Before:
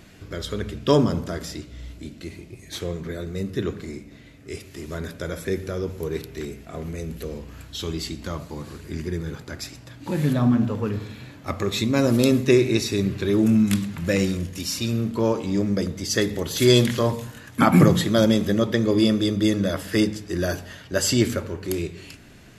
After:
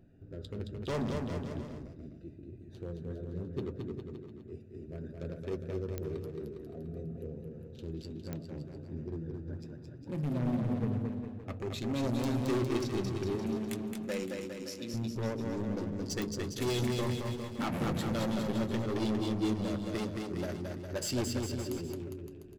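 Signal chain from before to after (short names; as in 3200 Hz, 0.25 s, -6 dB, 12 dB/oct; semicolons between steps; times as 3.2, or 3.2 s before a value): Wiener smoothing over 41 samples; 13.35–14.94 HPF 280 Hz 12 dB/oct; hard clip -20.5 dBFS, distortion -7 dB; flange 0.59 Hz, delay 7.4 ms, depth 1.2 ms, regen -48%; bouncing-ball echo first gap 0.22 s, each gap 0.85×, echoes 5; pops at 5.98/8.33/16.22, -17 dBFS; gain -6 dB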